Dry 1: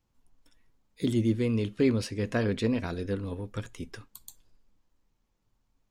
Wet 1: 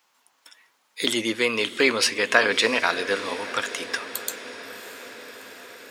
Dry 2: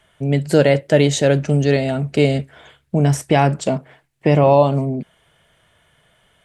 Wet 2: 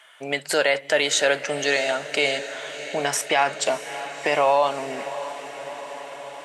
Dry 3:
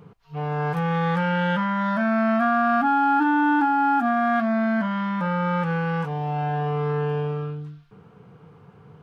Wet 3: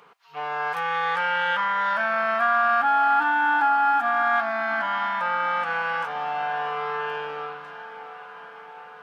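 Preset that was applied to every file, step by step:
HPF 1000 Hz 12 dB/oct; high shelf 4600 Hz -4.5 dB; in parallel at -1 dB: compressor, threshold -35 dBFS; on the sum: diffused feedback echo 0.65 s, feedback 71%, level -14.5 dB; maximiser +12.5 dB; match loudness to -23 LUFS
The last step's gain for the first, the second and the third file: +2.5, -8.5, -10.0 dB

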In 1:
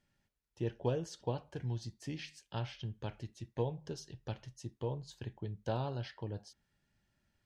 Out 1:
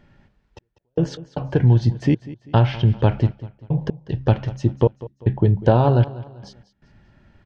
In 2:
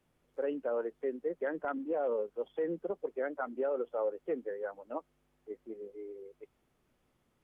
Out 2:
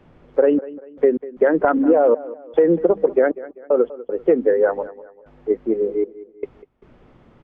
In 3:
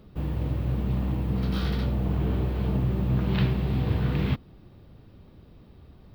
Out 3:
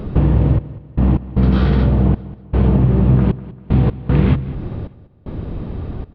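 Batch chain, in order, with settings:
de-hum 66.59 Hz, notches 4; compressor 5:1, threshold -36 dBFS; step gate "xxx..x.xxxx..x" 77 bpm -60 dB; tape spacing loss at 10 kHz 32 dB; feedback echo 0.196 s, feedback 39%, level -17.5 dB; normalise peaks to -3 dBFS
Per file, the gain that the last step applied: +26.5, +26.0, +25.5 dB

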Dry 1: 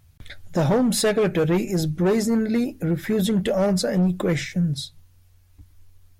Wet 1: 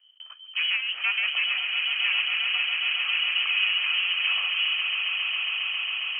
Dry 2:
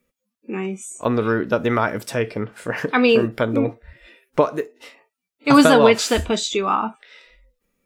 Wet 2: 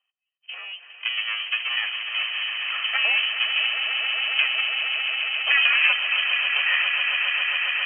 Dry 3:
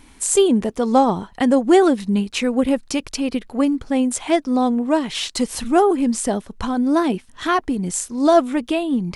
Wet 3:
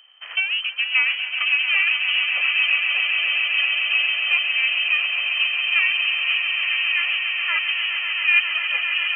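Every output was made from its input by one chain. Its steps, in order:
minimum comb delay 1.6 ms; inverted band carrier 3100 Hz; HPF 1100 Hz 12 dB/oct; swelling echo 0.136 s, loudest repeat 8, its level -9.5 dB; gain -4.5 dB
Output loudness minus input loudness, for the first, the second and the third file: -1.5, -1.5, +0.5 LU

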